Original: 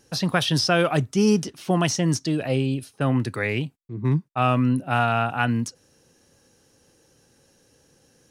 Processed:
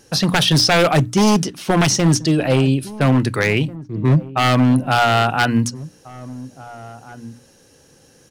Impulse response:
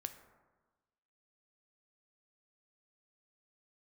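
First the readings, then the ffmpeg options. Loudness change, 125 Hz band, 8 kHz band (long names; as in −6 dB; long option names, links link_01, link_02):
+6.5 dB, +7.0 dB, +8.5 dB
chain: -filter_complex "[0:a]bandreject=frequency=60:width_type=h:width=6,bandreject=frequency=120:width_type=h:width=6,bandreject=frequency=180:width_type=h:width=6,bandreject=frequency=240:width_type=h:width=6,bandreject=frequency=300:width_type=h:width=6,aeval=exprs='0.158*(abs(mod(val(0)/0.158+3,4)-2)-1)':channel_layout=same,asplit=2[link_01][link_02];[link_02]adelay=1691,volume=-18dB,highshelf=frequency=4000:gain=-38[link_03];[link_01][link_03]amix=inputs=2:normalize=0,volume=8.5dB"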